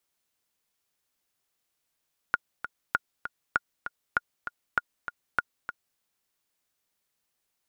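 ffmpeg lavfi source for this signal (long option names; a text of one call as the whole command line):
ffmpeg -f lavfi -i "aevalsrc='pow(10,(-9.5-10.5*gte(mod(t,2*60/197),60/197))/20)*sin(2*PI*1430*mod(t,60/197))*exp(-6.91*mod(t,60/197)/0.03)':duration=3.65:sample_rate=44100" out.wav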